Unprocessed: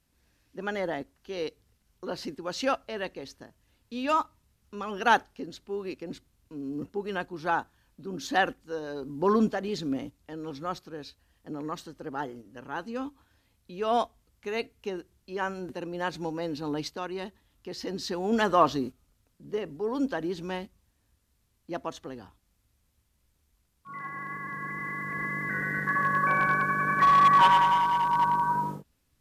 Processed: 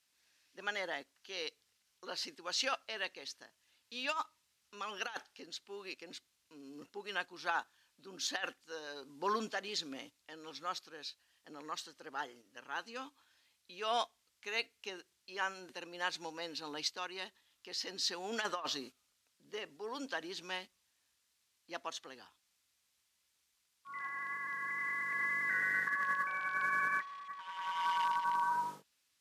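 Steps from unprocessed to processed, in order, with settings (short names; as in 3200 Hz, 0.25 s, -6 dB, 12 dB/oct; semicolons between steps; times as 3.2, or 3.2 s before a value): band-pass 4500 Hz, Q 0.57; negative-ratio compressor -34 dBFS, ratio -0.5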